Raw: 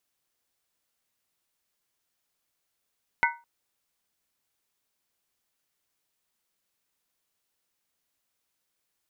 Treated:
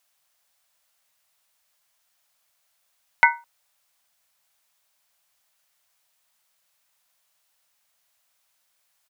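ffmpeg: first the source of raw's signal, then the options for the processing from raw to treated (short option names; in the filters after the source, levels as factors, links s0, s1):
-f lavfi -i "aevalsrc='0.1*pow(10,-3*t/0.3)*sin(2*PI*940*t)+0.0944*pow(10,-3*t/0.238)*sin(2*PI*1498.4*t)+0.0891*pow(10,-3*t/0.205)*sin(2*PI*2007.8*t)+0.0841*pow(10,-3*t/0.198)*sin(2*PI*2158.2*t)':d=0.21:s=44100"
-af "firequalizer=gain_entry='entry(190,0);entry(350,-13);entry(590,9)':delay=0.05:min_phase=1"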